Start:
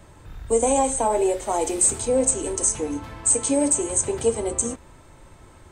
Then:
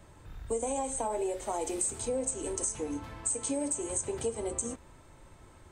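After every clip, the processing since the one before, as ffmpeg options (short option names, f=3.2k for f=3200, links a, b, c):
-af "acompressor=threshold=-23dB:ratio=4,volume=-6.5dB"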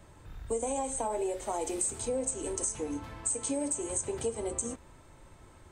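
-af anull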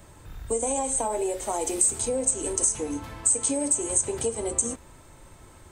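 -af "crystalizer=i=1:c=0,volume=4.5dB"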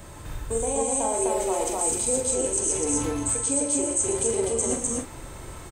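-filter_complex "[0:a]areverse,acompressor=threshold=-32dB:ratio=6,areverse,asplit=2[a][b];[b]adelay=44,volume=-7dB[c];[a][c]amix=inputs=2:normalize=0,aecho=1:1:116.6|253.6:0.447|0.891,volume=6.5dB"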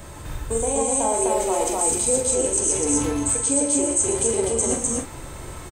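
-filter_complex "[0:a]asplit=2[a][b];[b]adelay=14,volume=-13.5dB[c];[a][c]amix=inputs=2:normalize=0,volume=3.5dB"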